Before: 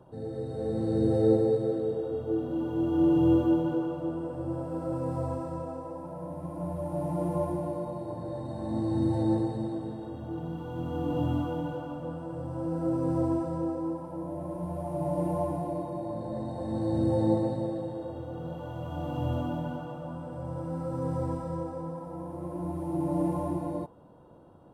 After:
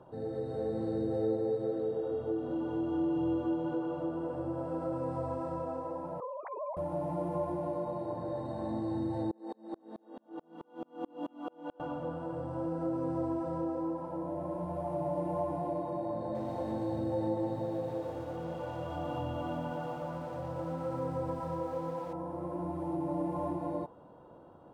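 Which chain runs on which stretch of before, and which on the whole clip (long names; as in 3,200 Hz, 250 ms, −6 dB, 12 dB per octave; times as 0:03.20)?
0:06.20–0:06.77: three sine waves on the formant tracks + high-pass filter 990 Hz 6 dB per octave
0:09.31–0:11.80: linear-phase brick-wall high-pass 180 Hz + tremolo with a ramp in dB swelling 4.6 Hz, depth 36 dB
0:16.23–0:22.13: mains-hum notches 50/100/150/200/250/300 Hz + feedback echo at a low word length 117 ms, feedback 55%, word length 8 bits, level −10 dB
whole clip: downward compressor 2.5 to 1, threshold −32 dBFS; low-pass filter 2,200 Hz 6 dB per octave; low-shelf EQ 300 Hz −9.5 dB; level +4 dB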